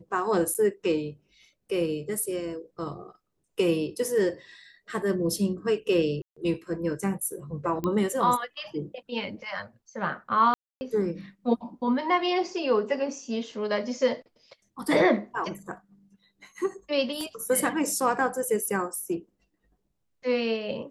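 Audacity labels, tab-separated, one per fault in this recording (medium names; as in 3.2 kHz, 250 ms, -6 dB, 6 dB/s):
0.540000	0.550000	dropout 8.4 ms
6.220000	6.370000	dropout 145 ms
7.840000	7.840000	pop -17 dBFS
10.540000	10.810000	dropout 270 ms
17.210000	17.210000	pop -23 dBFS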